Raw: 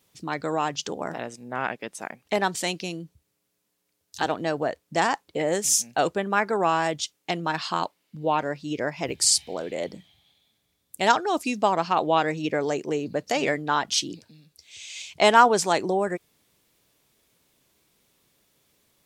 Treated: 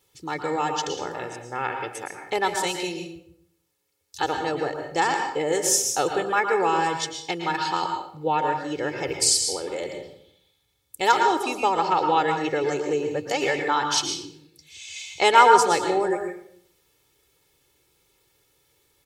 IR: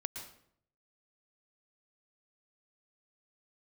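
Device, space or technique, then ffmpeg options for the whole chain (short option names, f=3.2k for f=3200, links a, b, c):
microphone above a desk: -filter_complex "[0:a]aecho=1:1:2.3:0.74[a];[1:a]atrim=start_sample=2205[b];[a][b]afir=irnorm=-1:irlink=0"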